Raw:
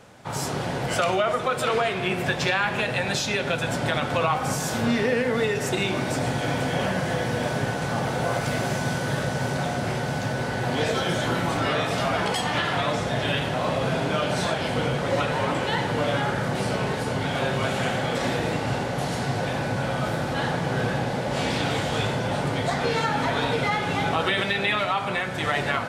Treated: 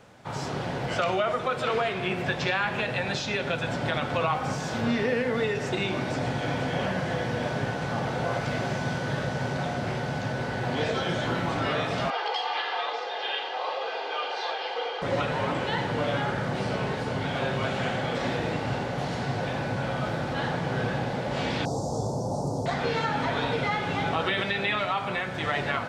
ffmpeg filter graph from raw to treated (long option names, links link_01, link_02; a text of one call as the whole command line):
ffmpeg -i in.wav -filter_complex "[0:a]asettb=1/sr,asplit=3[link_01][link_02][link_03];[link_01]atrim=end=12.104[link_04];[link_02]atrim=start=12.1:end=15.02,asetpts=PTS-STARTPTS,afade=type=in:duration=0.004:curve=qsin,afade=type=out:start_time=2.916:duration=0.004:curve=qsin,highpass=frequency=480:width=0.5412,highpass=frequency=480:width=1.3066,equalizer=frequency=510:width_type=q:width=4:gain=4,equalizer=frequency=940:width_type=q:width=4:gain=7,equalizer=frequency=3000:width_type=q:width=4:gain=5,equalizer=frequency=4500:width_type=q:width=4:gain=6,lowpass=frequency=5400:width=0.5412,lowpass=frequency=5400:width=1.3066,aecho=1:1:2.5:0.67,atrim=end_sample=128772,flanger=delay=4:depth=6.9:regen=81:speed=1.1:shape=sinusoidal[link_05];[link_03]atrim=start=15.016[link_06];[link_04][link_05]acrossfade=duration=0.004:curve1=hsin:curve2=qsin[link_07];[link_07][link_06]acrossfade=duration=0.004:curve1=qsin:curve2=hsin,asettb=1/sr,asplit=3[link_08][link_09][link_10];[link_08]atrim=end=21.654[link_11];[link_09]atrim=start=21.65:end=22.66,asetpts=PTS-STARTPTS,afade=type=in:duration=0.004:curve=qsin,afade=type=out:start_time=1.006:duration=0.004:curve=qsin,asuperstop=centerf=2300:order=8:qfactor=0.5,highshelf=frequency=3200:gain=12[link_12];[link_10]atrim=start=22.656[link_13];[link_11][link_12]acrossfade=duration=0.004:curve1=hsin:curve2=qsin[link_14];[link_14][link_13]acrossfade=duration=0.004:curve1=qsin:curve2=hsin,acrossover=split=6700[link_15][link_16];[link_16]acompressor=threshold=-54dB:ratio=4:attack=1:release=60[link_17];[link_15][link_17]amix=inputs=2:normalize=0,equalizer=frequency=11000:width_type=o:width=1.1:gain=-6,volume=-3dB" out.wav